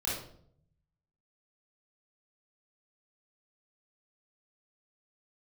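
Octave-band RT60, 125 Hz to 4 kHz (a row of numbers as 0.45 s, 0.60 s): 1.3 s, 0.90 s, 0.70 s, 0.55 s, 0.45 s, 0.45 s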